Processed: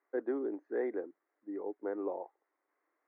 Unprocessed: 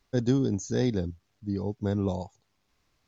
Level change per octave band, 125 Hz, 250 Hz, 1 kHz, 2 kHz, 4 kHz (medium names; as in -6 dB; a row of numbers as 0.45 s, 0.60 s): under -40 dB, -12.0 dB, -4.5 dB, -4.5 dB, under -35 dB